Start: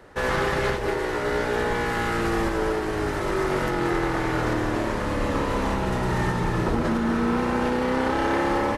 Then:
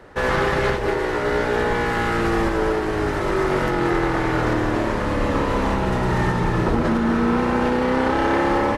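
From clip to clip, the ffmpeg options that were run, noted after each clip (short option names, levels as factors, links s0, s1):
-af "highshelf=f=6000:g=-7,volume=1.58"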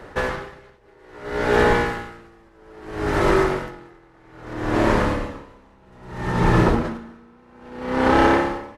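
-af "aeval=exprs='val(0)*pow(10,-37*(0.5-0.5*cos(2*PI*0.61*n/s))/20)':c=same,volume=1.78"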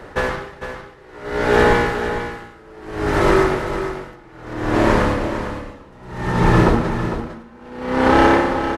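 -af "aecho=1:1:453:0.335,volume=1.41"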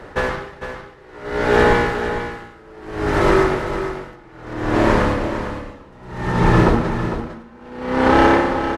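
-af "highshelf=f=9900:g=-6"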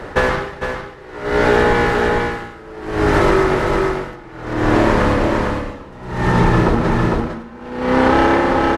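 -af "acompressor=threshold=0.141:ratio=6,volume=2.24"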